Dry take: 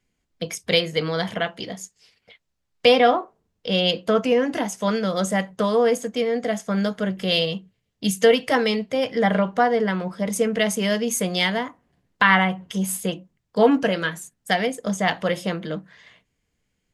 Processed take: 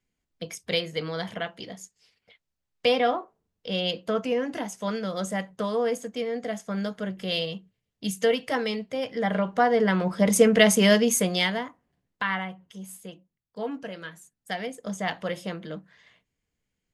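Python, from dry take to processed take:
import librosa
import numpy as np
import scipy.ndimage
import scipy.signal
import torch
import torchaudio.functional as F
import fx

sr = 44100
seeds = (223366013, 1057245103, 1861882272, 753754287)

y = fx.gain(x, sr, db=fx.line((9.22, -7.0), (10.21, 4.0), (10.92, 4.0), (11.58, -5.0), (12.75, -16.0), (13.81, -16.0), (14.97, -7.5)))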